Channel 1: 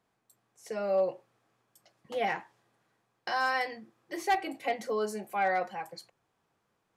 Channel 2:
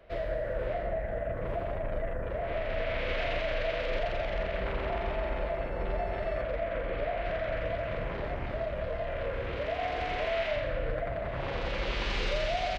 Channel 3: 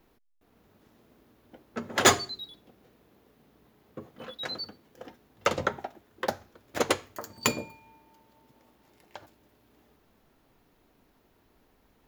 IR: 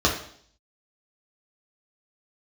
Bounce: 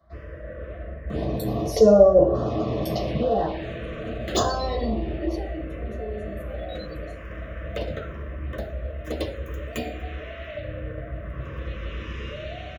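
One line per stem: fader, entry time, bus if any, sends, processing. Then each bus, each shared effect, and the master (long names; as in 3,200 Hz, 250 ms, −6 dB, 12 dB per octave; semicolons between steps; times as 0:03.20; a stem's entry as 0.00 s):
0:02.96 −2.5 dB → 0:03.36 −11.5 dB → 0:05.12 −11.5 dB → 0:05.55 −24 dB, 1.10 s, send −6.5 dB, gate on every frequency bin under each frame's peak −25 dB strong; tilt shelving filter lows +5.5 dB, about 1,100 Hz; envelope flattener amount 70%
−11.0 dB, 0.00 s, send −7 dB, no processing
−10.5 dB, 2.30 s, send −10 dB, no processing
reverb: on, RT60 0.60 s, pre-delay 3 ms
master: phaser swept by the level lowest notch 460 Hz, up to 2,200 Hz, full sweep at −18 dBFS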